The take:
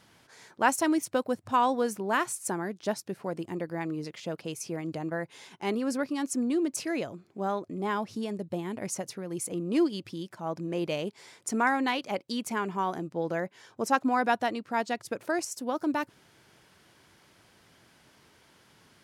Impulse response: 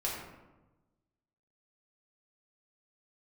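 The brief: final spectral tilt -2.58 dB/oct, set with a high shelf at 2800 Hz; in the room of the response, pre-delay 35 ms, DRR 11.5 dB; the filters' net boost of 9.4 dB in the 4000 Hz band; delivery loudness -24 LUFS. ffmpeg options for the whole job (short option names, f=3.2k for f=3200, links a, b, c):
-filter_complex "[0:a]highshelf=f=2.8k:g=8.5,equalizer=f=4k:t=o:g=5.5,asplit=2[a][b];[1:a]atrim=start_sample=2205,adelay=35[c];[b][c]afir=irnorm=-1:irlink=0,volume=-16dB[d];[a][d]amix=inputs=2:normalize=0,volume=4.5dB"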